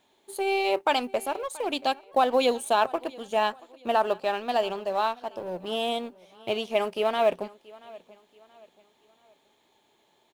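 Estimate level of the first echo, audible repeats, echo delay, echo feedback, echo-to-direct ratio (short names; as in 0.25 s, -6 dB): -22.0 dB, 2, 0.68 s, 38%, -21.5 dB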